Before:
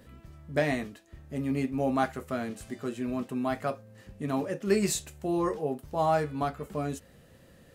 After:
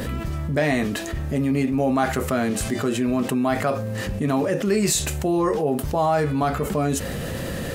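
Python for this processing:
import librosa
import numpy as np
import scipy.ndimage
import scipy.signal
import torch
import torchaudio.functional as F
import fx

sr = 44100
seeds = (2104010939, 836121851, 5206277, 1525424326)

y = fx.env_flatten(x, sr, amount_pct=70)
y = y * 10.0 ** (2.0 / 20.0)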